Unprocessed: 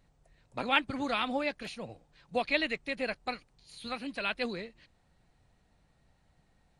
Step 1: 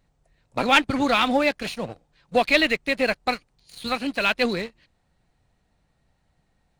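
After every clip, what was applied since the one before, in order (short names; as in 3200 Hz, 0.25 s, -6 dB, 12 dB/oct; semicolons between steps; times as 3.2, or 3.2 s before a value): sample leveller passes 2; gain +4 dB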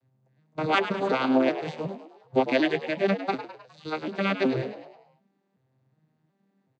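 arpeggiated vocoder minor triad, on C3, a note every 0.37 s; on a send: frequency-shifting echo 0.103 s, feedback 50%, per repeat +80 Hz, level -11.5 dB; on the sum: gain -2.5 dB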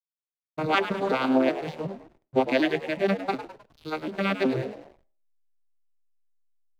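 backlash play -42 dBFS; on a send at -23 dB: reverb RT60 0.40 s, pre-delay 35 ms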